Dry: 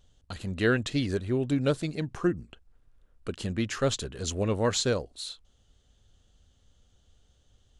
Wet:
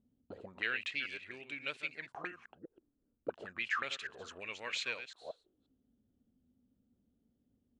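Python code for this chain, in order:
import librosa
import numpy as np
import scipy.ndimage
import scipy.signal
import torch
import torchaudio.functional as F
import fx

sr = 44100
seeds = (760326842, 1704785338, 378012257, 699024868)

y = fx.reverse_delay(x, sr, ms=177, wet_db=-9.0)
y = fx.auto_wah(y, sr, base_hz=230.0, top_hz=2400.0, q=6.1, full_db=-25.5, direction='up')
y = F.gain(torch.from_numpy(y), 7.0).numpy()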